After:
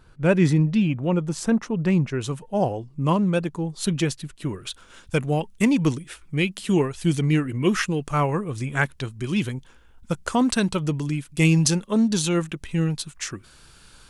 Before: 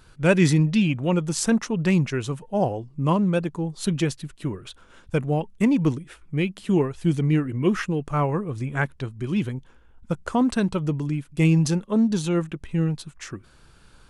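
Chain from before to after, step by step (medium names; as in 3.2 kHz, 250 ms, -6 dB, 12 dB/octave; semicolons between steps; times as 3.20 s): treble shelf 2.2 kHz -8 dB, from 2.21 s +3.5 dB, from 4.49 s +10.5 dB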